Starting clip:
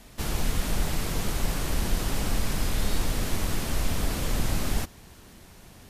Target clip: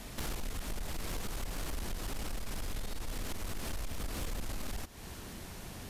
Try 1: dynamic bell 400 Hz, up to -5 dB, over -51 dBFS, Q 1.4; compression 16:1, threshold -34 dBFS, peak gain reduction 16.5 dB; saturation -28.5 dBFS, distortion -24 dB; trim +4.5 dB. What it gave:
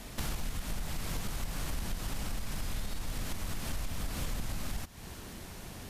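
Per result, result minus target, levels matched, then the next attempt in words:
saturation: distortion -10 dB; 500 Hz band -3.0 dB
dynamic bell 400 Hz, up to -5 dB, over -51 dBFS, Q 1.4; compression 16:1, threshold -34 dBFS, peak gain reduction 16.5 dB; saturation -35.5 dBFS, distortion -14 dB; trim +4.5 dB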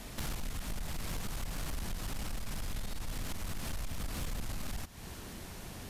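500 Hz band -3.0 dB
dynamic bell 140 Hz, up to -5 dB, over -51 dBFS, Q 1.4; compression 16:1, threshold -34 dBFS, peak gain reduction 16.5 dB; saturation -35.5 dBFS, distortion -14 dB; trim +4.5 dB

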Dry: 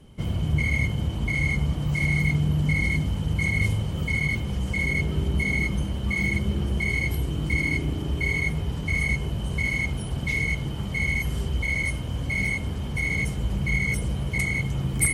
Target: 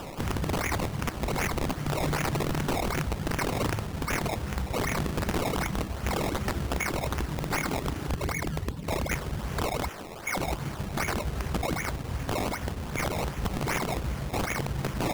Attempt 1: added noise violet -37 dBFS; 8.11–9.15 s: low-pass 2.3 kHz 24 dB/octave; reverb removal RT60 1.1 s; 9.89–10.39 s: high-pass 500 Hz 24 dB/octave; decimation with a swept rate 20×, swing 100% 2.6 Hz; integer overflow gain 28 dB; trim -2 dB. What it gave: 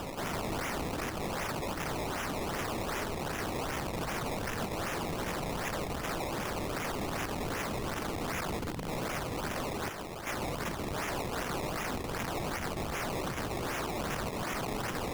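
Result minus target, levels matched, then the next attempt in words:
integer overflow: distortion +26 dB
added noise violet -37 dBFS; 8.11–9.15 s: low-pass 2.3 kHz 24 dB/octave; reverb removal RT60 1.1 s; 9.89–10.39 s: high-pass 500 Hz 24 dB/octave; decimation with a swept rate 20×, swing 100% 2.6 Hz; integer overflow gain 20 dB; trim -2 dB

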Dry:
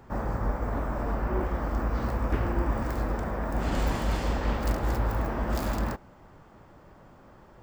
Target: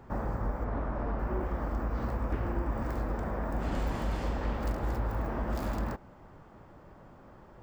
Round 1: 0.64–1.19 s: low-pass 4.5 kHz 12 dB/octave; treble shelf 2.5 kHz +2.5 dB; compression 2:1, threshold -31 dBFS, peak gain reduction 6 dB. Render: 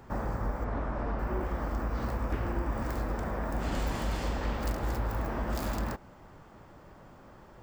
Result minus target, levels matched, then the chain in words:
4 kHz band +5.5 dB
0.64–1.19 s: low-pass 4.5 kHz 12 dB/octave; treble shelf 2.5 kHz -6 dB; compression 2:1, threshold -31 dBFS, peak gain reduction 6 dB

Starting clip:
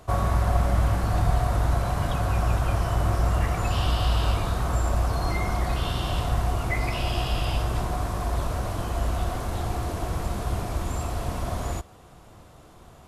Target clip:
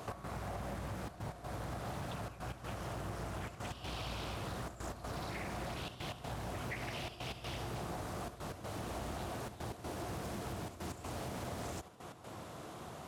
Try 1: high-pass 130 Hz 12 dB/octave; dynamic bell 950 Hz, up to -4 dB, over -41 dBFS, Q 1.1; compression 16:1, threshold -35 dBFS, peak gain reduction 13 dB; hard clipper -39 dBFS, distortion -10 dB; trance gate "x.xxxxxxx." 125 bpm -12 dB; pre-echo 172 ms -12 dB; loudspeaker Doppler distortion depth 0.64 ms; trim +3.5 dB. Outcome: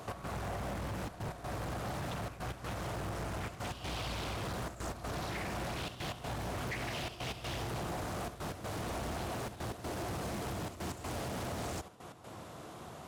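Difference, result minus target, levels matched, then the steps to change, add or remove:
compression: peak gain reduction -5.5 dB
change: compression 16:1, threshold -41 dBFS, peak gain reduction 18.5 dB

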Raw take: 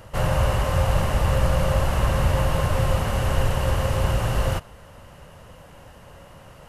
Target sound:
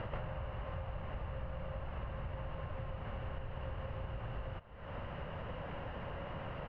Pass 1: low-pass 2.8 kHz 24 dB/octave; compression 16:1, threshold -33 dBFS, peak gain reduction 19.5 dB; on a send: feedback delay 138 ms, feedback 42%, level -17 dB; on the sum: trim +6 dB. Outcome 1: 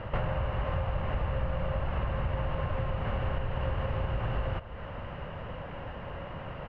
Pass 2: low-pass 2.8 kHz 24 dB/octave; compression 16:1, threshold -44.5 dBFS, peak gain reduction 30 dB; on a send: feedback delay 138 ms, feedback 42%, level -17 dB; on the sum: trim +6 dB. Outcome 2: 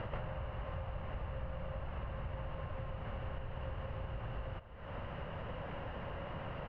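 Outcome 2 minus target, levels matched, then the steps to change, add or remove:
echo-to-direct +10 dB
change: feedback delay 138 ms, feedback 42%, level -27 dB

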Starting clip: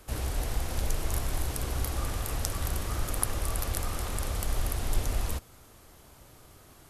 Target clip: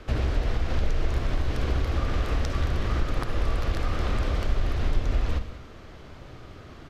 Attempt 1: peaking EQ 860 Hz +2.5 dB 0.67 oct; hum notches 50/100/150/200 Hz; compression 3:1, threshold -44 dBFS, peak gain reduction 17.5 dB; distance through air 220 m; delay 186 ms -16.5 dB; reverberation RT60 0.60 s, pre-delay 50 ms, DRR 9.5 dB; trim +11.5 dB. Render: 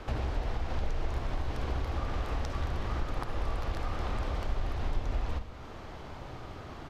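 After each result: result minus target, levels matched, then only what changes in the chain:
compression: peak gain reduction +7.5 dB; 1 kHz band +5.0 dB
change: compression 3:1, threshold -33 dBFS, peak gain reduction 10 dB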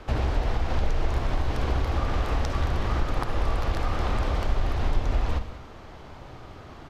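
1 kHz band +4.0 dB
change: peaking EQ 860 Hz -5.5 dB 0.67 oct

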